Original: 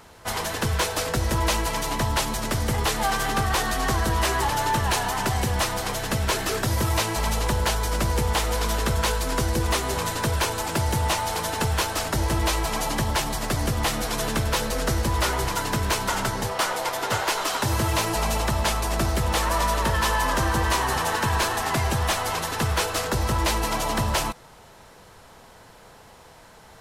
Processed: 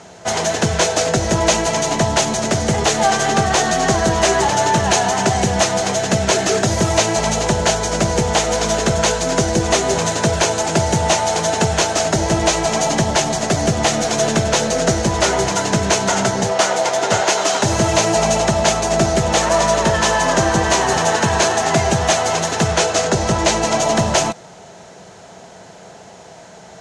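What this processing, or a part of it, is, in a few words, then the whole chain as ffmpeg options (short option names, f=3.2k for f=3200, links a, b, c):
car door speaker: -filter_complex "[0:a]asettb=1/sr,asplit=3[a][b][c];[a]atrim=end=22.684[d];[b]atrim=start=22.68:end=23.8,asetpts=PTS-STARTPTS,afade=t=in:d=0.004:c=qsin,afade=t=out:st=1.116:d=0.004:c=qsin,lowpass=11k[e];[c]atrim=start=23.796[f];[d][e]acrossfade=d=0.004:c1=hsin:c2=qsin[g];[g][f]acrossfade=d=0.004:c1=qsin:c2=hsin,highpass=99,equalizer=f=180:t=q:w=4:g=9,equalizer=f=390:t=q:w=4:g=5,equalizer=f=670:t=q:w=4:g=9,equalizer=f=1.1k:t=q:w=4:g=-5,equalizer=f=6.5k:t=q:w=4:g=9,lowpass=f=8.4k:w=0.5412,lowpass=f=8.4k:w=1.3066,volume=6.5dB"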